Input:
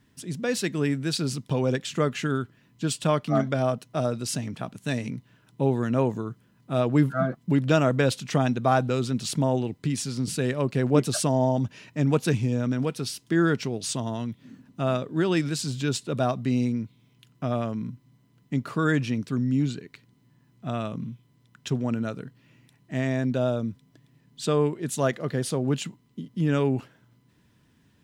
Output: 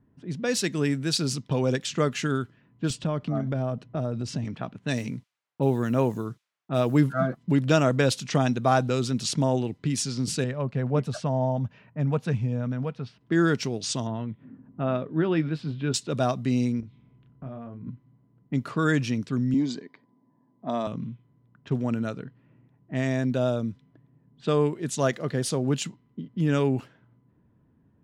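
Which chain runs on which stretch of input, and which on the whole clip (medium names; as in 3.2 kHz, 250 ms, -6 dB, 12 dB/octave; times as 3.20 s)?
2.90–4.45 s: tilt EQ -2.5 dB/octave + compression 3:1, threshold -26 dBFS
4.96–7.00 s: gate -49 dBFS, range -48 dB + added noise violet -57 dBFS
10.44–13.21 s: low-pass 1.1 kHz 6 dB/octave + peaking EQ 330 Hz -12 dB 0.62 oct
14.07–15.94 s: doubling 19 ms -13 dB + upward compressor, threshold -44 dBFS + distance through air 400 m
16.80–17.87 s: compression 2:1, threshold -49 dBFS + bass shelf 130 Hz +11 dB + doubling 30 ms -5 dB
19.54–20.87 s: cabinet simulation 200–7800 Hz, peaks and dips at 250 Hz +6 dB, 640 Hz +5 dB, 970 Hz +8 dB, 2.6 kHz -7 dB, 4.9 kHz +7 dB + comb of notches 1.4 kHz
whole clip: level-controlled noise filter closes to 850 Hz, open at -23.5 dBFS; dynamic bell 5.8 kHz, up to +5 dB, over -47 dBFS, Q 1.3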